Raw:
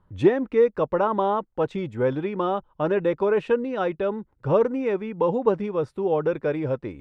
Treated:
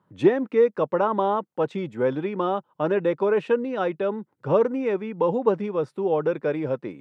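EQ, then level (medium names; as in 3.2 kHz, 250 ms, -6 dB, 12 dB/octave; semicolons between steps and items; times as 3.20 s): high-pass 140 Hz 24 dB/octave; 0.0 dB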